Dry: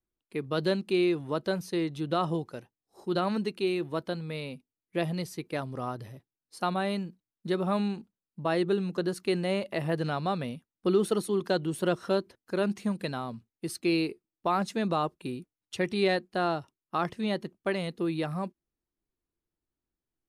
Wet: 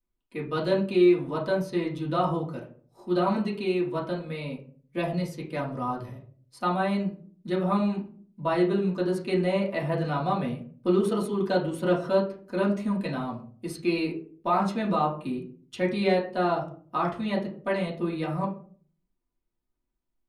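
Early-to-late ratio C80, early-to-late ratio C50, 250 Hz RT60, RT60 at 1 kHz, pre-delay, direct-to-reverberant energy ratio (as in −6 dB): 14.0 dB, 9.0 dB, 0.65 s, 0.40 s, 3 ms, −5.5 dB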